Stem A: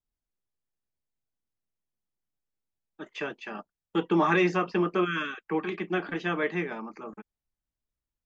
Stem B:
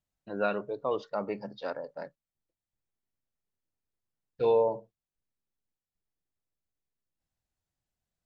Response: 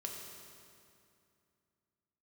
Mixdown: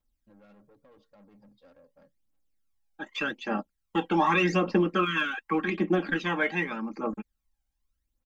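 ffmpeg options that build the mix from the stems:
-filter_complex "[0:a]aphaser=in_gain=1:out_gain=1:delay=1.4:decay=0.63:speed=0.85:type=triangular,volume=1.5dB[a];[1:a]bass=f=250:g=14,treble=f=4k:g=-2,alimiter=level_in=1dB:limit=-24dB:level=0:latency=1:release=64,volume=-1dB,aeval=exprs='(tanh(50.1*val(0)+0.3)-tanh(0.3))/50.1':c=same,volume=-19.5dB[b];[a][b]amix=inputs=2:normalize=0,aecho=1:1:3.7:0.5,acompressor=threshold=-19dB:ratio=6"

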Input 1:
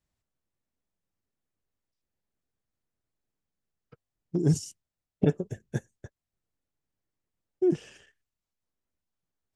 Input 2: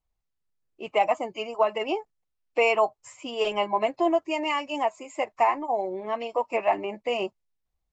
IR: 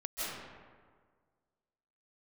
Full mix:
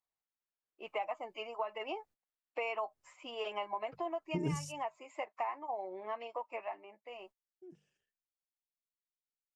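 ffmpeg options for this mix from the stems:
-filter_complex "[0:a]bandreject=f=50:t=h:w=6,bandreject=f=100:t=h:w=6,bandreject=f=150:t=h:w=6,bandreject=f=200:t=h:w=6,volume=2.5dB,asplit=3[a][b][c];[a]atrim=end=4.97,asetpts=PTS-STARTPTS,afade=t=out:st=4.966:d=0.004:c=hsin[d];[b]atrim=start=4.97:end=7.09,asetpts=PTS-STARTPTS,volume=0[e];[c]atrim=start=7.09,asetpts=PTS-STARTPTS,afade=t=in:d=0.004:c=hsin[f];[d][e][f]concat=n=3:v=0:a=1[g];[1:a]bandpass=f=1.3k:t=q:w=0.65:csg=0,volume=-5dB,afade=t=out:st=6.15:d=0.64:silence=0.251189,asplit=2[h][i];[i]apad=whole_len=421223[j];[g][j]sidechaingate=range=-33dB:threshold=-56dB:ratio=16:detection=peak[k];[k][h]amix=inputs=2:normalize=0,acompressor=threshold=-36dB:ratio=3"

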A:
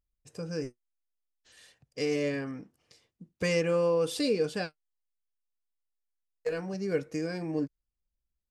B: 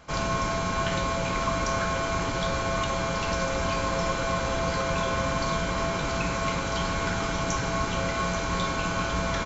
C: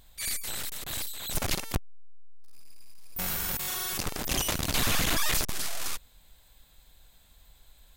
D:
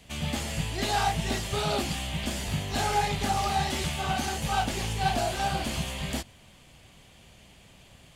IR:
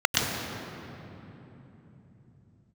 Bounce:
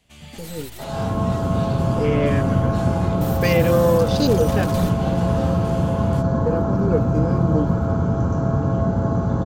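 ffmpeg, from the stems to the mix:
-filter_complex "[0:a]afwtdn=0.0112,dynaudnorm=f=910:g=3:m=7dB,volume=1.5dB,asplit=2[a][b];[1:a]afwtdn=0.0398,equalizer=f=2.1k:w=0.51:g=-13.5,adelay=700,volume=-6dB,asplit=2[c][d];[d]volume=-3dB[e];[2:a]aecho=1:1:5.6:0.72,acompressor=threshold=-35dB:ratio=2,aeval=exprs='sgn(val(0))*max(abs(val(0))-0.00266,0)':c=same,volume=-1.5dB,asplit=2[f][g];[g]volume=-24dB[h];[3:a]volume=-10dB[i];[b]apad=whole_len=351298[j];[f][j]sidechaingate=range=-33dB:threshold=-56dB:ratio=16:detection=peak[k];[4:a]atrim=start_sample=2205[l];[e][h]amix=inputs=2:normalize=0[m];[m][l]afir=irnorm=-1:irlink=0[n];[a][c][k][i][n]amix=inputs=5:normalize=0"

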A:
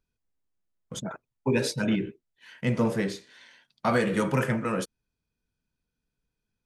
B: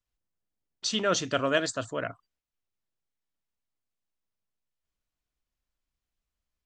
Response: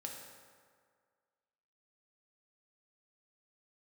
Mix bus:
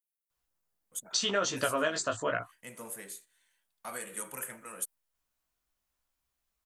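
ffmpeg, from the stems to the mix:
-filter_complex "[0:a]highpass=f=1k:p=1,agate=range=-8dB:threshold=-49dB:ratio=16:detection=peak,aexciter=amount=11.1:drive=7.4:freq=7.6k,volume=-12.5dB[a];[1:a]equalizer=f=1k:t=o:w=2.2:g=8,flanger=delay=15:depth=4.9:speed=0.86,highshelf=f=5.8k:g=11.5,adelay=300,volume=1.5dB[b];[a][b]amix=inputs=2:normalize=0,acompressor=threshold=-26dB:ratio=6"

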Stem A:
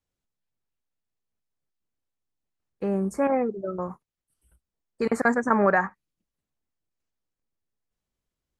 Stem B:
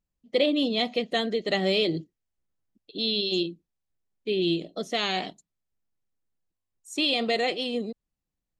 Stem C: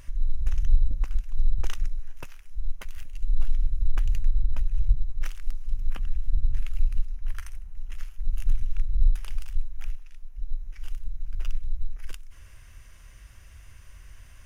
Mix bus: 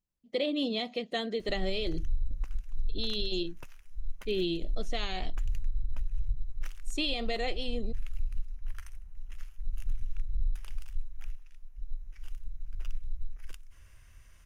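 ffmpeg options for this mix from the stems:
-filter_complex "[1:a]volume=-4.5dB[a];[2:a]adelay=1400,volume=-7dB,alimiter=limit=-21dB:level=0:latency=1:release=87,volume=0dB[b];[a][b]amix=inputs=2:normalize=0,alimiter=limit=-20.5dB:level=0:latency=1:release=308"

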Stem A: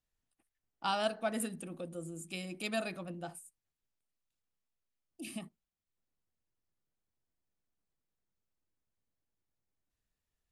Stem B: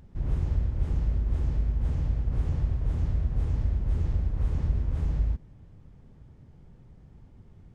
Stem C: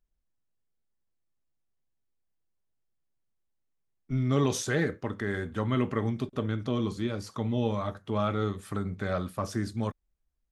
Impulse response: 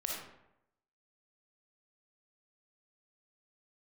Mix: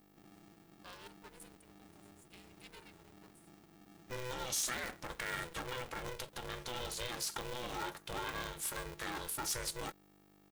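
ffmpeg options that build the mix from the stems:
-filter_complex "[0:a]volume=-16dB[a];[1:a]alimiter=level_in=1.5dB:limit=-24dB:level=0:latency=1:release=26,volume=-1.5dB,volume=-18dB[b];[2:a]aecho=1:1:3.6:0.42,acompressor=threshold=-29dB:ratio=4,aeval=exprs='val(0)+0.00224*(sin(2*PI*50*n/s)+sin(2*PI*2*50*n/s)/2+sin(2*PI*3*50*n/s)/3+sin(2*PI*4*50*n/s)/4+sin(2*PI*5*50*n/s)/5)':c=same,volume=2dB[c];[b][c]amix=inputs=2:normalize=0,aemphasis=mode=production:type=bsi,alimiter=level_in=1.5dB:limit=-24dB:level=0:latency=1:release=33,volume=-1.5dB,volume=0dB[d];[a][d]amix=inputs=2:normalize=0,equalizer=f=380:t=o:w=2.6:g=-10,aeval=exprs='val(0)*sgn(sin(2*PI*250*n/s))':c=same"

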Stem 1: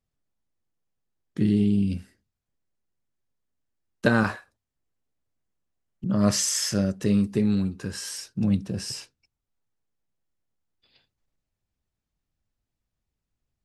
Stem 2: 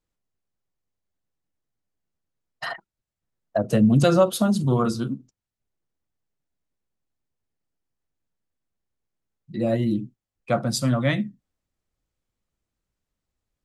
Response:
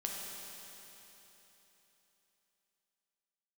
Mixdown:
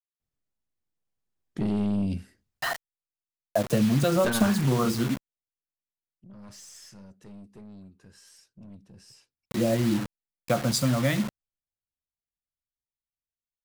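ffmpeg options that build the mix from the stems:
-filter_complex "[0:a]aeval=exprs='0.562*(cos(1*acos(clip(val(0)/0.562,-1,1)))-cos(1*PI/2))+0.0708*(cos(3*acos(clip(val(0)/0.562,-1,1)))-cos(3*PI/2))+0.2*(cos(5*acos(clip(val(0)/0.562,-1,1)))-cos(5*PI/2))+0.0562*(cos(6*acos(clip(val(0)/0.562,-1,1)))-cos(6*PI/2))+0.0562*(cos(7*acos(clip(val(0)/0.562,-1,1)))-cos(7*PI/2))':c=same,dynaudnorm=f=160:g=21:m=3.5dB,aeval=exprs='(tanh(6.31*val(0)+0.35)-tanh(0.35))/6.31':c=same,adelay=200,volume=-9.5dB[a];[1:a]acompressor=threshold=-22dB:ratio=4,acrusher=bits=5:mix=0:aa=0.000001,volume=-3dB,asplit=2[b][c];[c]apad=whole_len=610609[d];[a][d]sidechaingate=range=-21dB:threshold=-35dB:ratio=16:detection=peak[e];[e][b]amix=inputs=2:normalize=0,dynaudnorm=f=780:g=3:m=4.5dB"

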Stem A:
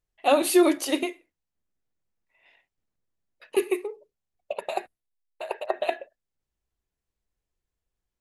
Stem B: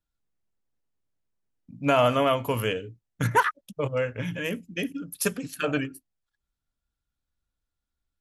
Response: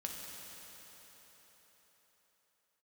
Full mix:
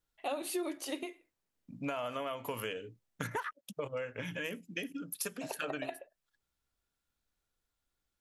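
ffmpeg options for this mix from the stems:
-filter_complex "[0:a]volume=-4dB,asplit=3[a][b][c];[a]atrim=end=3.53,asetpts=PTS-STARTPTS,afade=t=out:st=3.526:d=0.004:c=hsin[d];[b]atrim=start=3.53:end=5.41,asetpts=PTS-STARTPTS,volume=0[e];[c]atrim=start=5.41,asetpts=PTS-STARTPTS,afade=t=in:d=0.004:c=hsin[f];[d][e][f]concat=n=3:v=0:a=1[g];[1:a]highpass=f=350:p=1,acompressor=threshold=-27dB:ratio=2.5,volume=2.5dB[h];[g][h]amix=inputs=2:normalize=0,acompressor=threshold=-38dB:ratio=3"

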